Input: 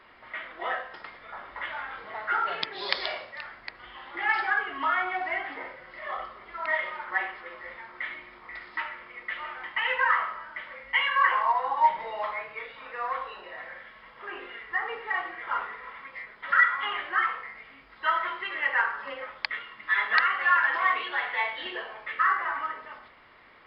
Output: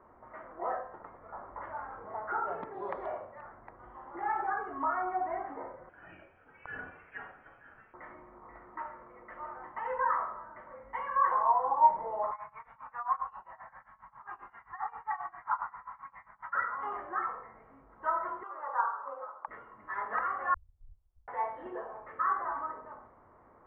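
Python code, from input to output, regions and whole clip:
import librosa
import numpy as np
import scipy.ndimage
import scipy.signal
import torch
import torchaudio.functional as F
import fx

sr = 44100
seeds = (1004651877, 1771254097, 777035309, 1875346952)

y = fx.chain(x, sr, fx.highpass(hz=270.0, slope=12),
    fx.freq_invert(carrier_hz=3600), at=(5.89, 7.94))
y = fx.chain(y, sr, fx.curve_eq(hz=(160.0, 460.0, 850.0), db=(0, -21, 6)),
    fx.tremolo(hz=7.5, depth=0.91), at=(12.31, 16.55))
y = fx.chain(y, sr, fx.bandpass_edges(low_hz=650.0, high_hz=3300.0),
    fx.high_shelf_res(hz=1600.0, db=-6.5, q=3.0), at=(18.43, 19.48))
y = fx.chain(y, sr, fx.delta_mod(bps=64000, step_db=-41.0),
    fx.cheby2_bandstop(low_hz=290.0, high_hz=1700.0, order=4, stop_db=80),
    fx.quant_companded(bits=8), at=(20.54, 21.28))
y = scipy.signal.sosfilt(scipy.signal.butter(4, 1100.0, 'lowpass', fs=sr, output='sos'), y)
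y = fx.peak_eq(y, sr, hz=88.0, db=5.0, octaves=0.65)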